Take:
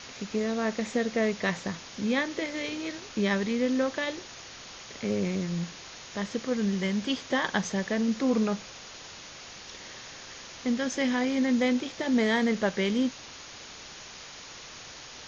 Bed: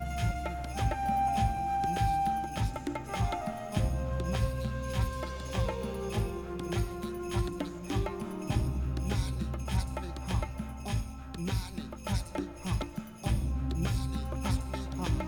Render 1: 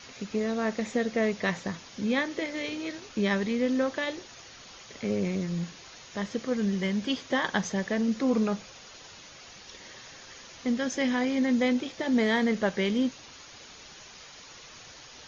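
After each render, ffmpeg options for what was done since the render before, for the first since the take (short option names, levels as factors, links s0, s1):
-af "afftdn=nr=6:nf=-45"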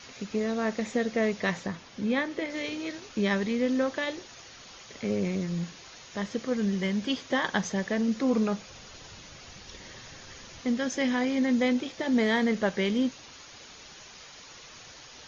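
-filter_complex "[0:a]asettb=1/sr,asplit=3[s0][s1][s2];[s0]atrim=end=1.664[s3];[s1]atrim=start=1.66:end=2.5,asetpts=PTS-STARTPTS,afade=t=in:d=0.004:c=qsin,afade=t=out:st=0.836:d=0.004:c=qsin,highshelf=f=5000:g=-9.5[s4];[s2]atrim=start=2.496[s5];[s3][s4]acrossfade=d=0.004:c1=hsin:c2=qsin[s6];[s6][s5]acrossfade=d=0.004:c1=qsin:c2=hsin,asettb=1/sr,asplit=3[s7][s8][s9];[s7]atrim=end=8.704[s10];[s8]atrim=start=8.7:end=10.61,asetpts=PTS-STARTPTS,afade=t=in:d=0.004:c=qsin,afade=t=out:st=1.906:d=0.004:c=qsin,lowshelf=f=190:g=11.5[s11];[s9]atrim=start=10.606[s12];[s10][s11]acrossfade=d=0.004:c1=hsin:c2=qsin[s13];[s13][s12]acrossfade=d=0.004:c1=qsin:c2=hsin"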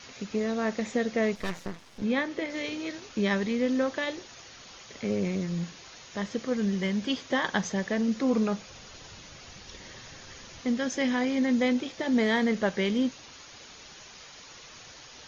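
-filter_complex "[0:a]asettb=1/sr,asplit=3[s0][s1][s2];[s0]atrim=end=1.354[s3];[s1]atrim=start=1.35:end=2.02,asetpts=PTS-STARTPTS,afade=t=in:d=0.004:c=qsin,afade=t=out:st=0.666:d=0.004:c=qsin,aeval=exprs='max(val(0),0)':c=same[s4];[s2]atrim=start=2.016[s5];[s3][s4]acrossfade=d=0.004:c1=hsin:c2=qsin[s6];[s6][s5]acrossfade=d=0.004:c1=qsin:c2=hsin"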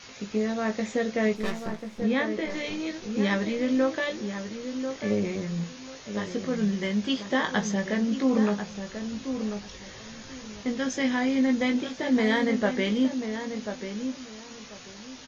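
-filter_complex "[0:a]asplit=2[s0][s1];[s1]adelay=19,volume=0.531[s2];[s0][s2]amix=inputs=2:normalize=0,asplit=2[s3][s4];[s4]adelay=1040,lowpass=f=1400:p=1,volume=0.422,asplit=2[s5][s6];[s6]adelay=1040,lowpass=f=1400:p=1,volume=0.24,asplit=2[s7][s8];[s8]adelay=1040,lowpass=f=1400:p=1,volume=0.24[s9];[s3][s5][s7][s9]amix=inputs=4:normalize=0"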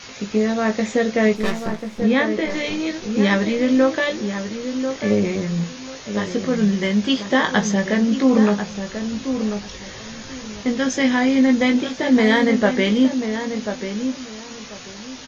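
-af "volume=2.51"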